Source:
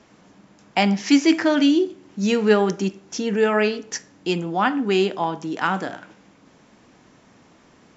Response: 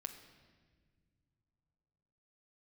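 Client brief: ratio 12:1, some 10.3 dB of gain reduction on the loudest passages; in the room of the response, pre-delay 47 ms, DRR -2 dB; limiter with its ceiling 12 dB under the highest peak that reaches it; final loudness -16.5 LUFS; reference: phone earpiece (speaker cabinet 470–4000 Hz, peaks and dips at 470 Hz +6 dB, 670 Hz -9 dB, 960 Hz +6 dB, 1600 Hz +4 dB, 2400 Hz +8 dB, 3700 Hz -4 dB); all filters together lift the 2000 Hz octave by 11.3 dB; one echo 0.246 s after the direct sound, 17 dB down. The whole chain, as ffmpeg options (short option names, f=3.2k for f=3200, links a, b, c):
-filter_complex "[0:a]equalizer=f=2k:t=o:g=8.5,acompressor=threshold=-20dB:ratio=12,alimiter=limit=-19.5dB:level=0:latency=1,aecho=1:1:246:0.141,asplit=2[a][b];[1:a]atrim=start_sample=2205,adelay=47[c];[b][c]afir=irnorm=-1:irlink=0,volume=5dB[d];[a][d]amix=inputs=2:normalize=0,highpass=470,equalizer=f=470:t=q:w=4:g=6,equalizer=f=670:t=q:w=4:g=-9,equalizer=f=960:t=q:w=4:g=6,equalizer=f=1.6k:t=q:w=4:g=4,equalizer=f=2.4k:t=q:w=4:g=8,equalizer=f=3.7k:t=q:w=4:g=-4,lowpass=f=4k:w=0.5412,lowpass=f=4k:w=1.3066,volume=9dB"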